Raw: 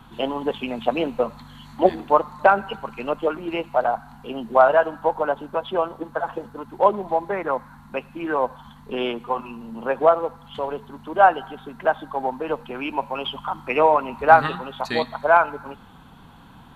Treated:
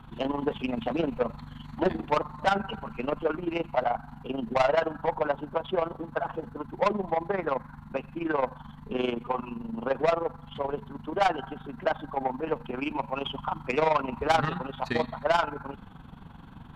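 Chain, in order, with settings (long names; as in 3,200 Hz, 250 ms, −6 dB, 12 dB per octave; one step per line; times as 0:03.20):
bass and treble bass +6 dB, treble −9 dB
soft clipping −16 dBFS, distortion −8 dB
amplitude modulation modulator 23 Hz, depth 55%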